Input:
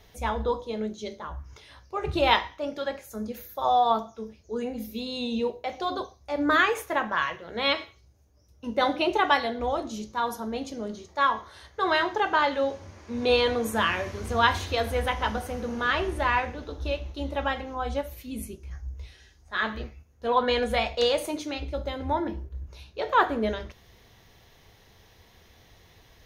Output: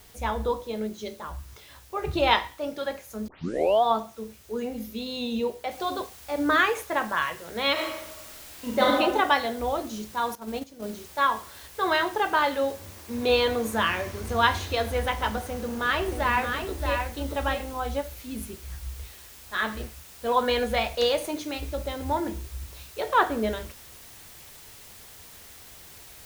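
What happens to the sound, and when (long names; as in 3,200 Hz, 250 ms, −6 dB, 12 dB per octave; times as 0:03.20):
0:03.28: tape start 0.55 s
0:05.71: noise floor change −55 dB −48 dB
0:07.72–0:08.95: thrown reverb, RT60 1.1 s, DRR −3 dB
0:10.35–0:10.84: noise gate −33 dBFS, range −12 dB
0:15.43–0:17.74: single-tap delay 627 ms −5.5 dB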